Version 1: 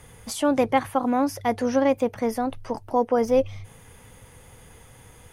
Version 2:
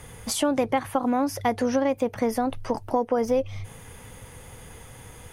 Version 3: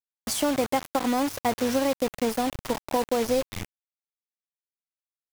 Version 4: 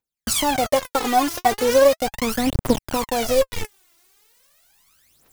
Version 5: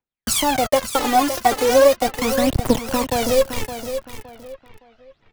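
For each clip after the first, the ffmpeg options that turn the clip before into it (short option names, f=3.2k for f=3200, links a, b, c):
-af "acompressor=threshold=-25dB:ratio=4,volume=4.5dB"
-af "equalizer=f=1.8k:t=o:w=0.22:g=-4.5,acrusher=bits=4:mix=0:aa=0.000001,volume=-1.5dB"
-af "areverse,acompressor=mode=upward:threshold=-41dB:ratio=2.5,areverse,aphaser=in_gain=1:out_gain=1:delay=3:decay=0.76:speed=0.38:type=triangular,volume=3.5dB"
-filter_complex "[0:a]aecho=1:1:565|1130|1695:0.316|0.098|0.0304,acrossover=split=140|3600[a][b][c];[c]acrusher=bits=6:mix=0:aa=0.000001[d];[a][b][d]amix=inputs=3:normalize=0,volume=1.5dB"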